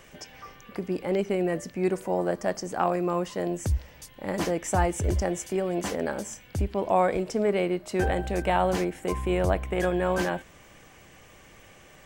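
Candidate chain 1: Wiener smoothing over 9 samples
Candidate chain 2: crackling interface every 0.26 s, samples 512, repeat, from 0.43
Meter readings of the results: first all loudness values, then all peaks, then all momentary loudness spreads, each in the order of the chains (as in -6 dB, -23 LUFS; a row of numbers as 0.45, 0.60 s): -28.0, -27.5 LUFS; -10.5, -10.5 dBFS; 8, 10 LU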